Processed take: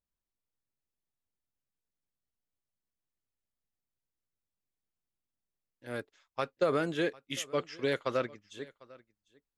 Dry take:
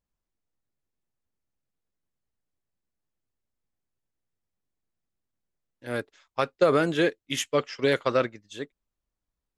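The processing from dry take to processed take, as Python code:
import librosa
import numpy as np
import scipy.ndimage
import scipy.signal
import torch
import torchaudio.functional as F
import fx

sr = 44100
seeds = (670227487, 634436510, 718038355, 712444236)

y = x + 10.0 ** (-22.5 / 20.0) * np.pad(x, (int(749 * sr / 1000.0), 0))[:len(x)]
y = y * librosa.db_to_amplitude(-7.5)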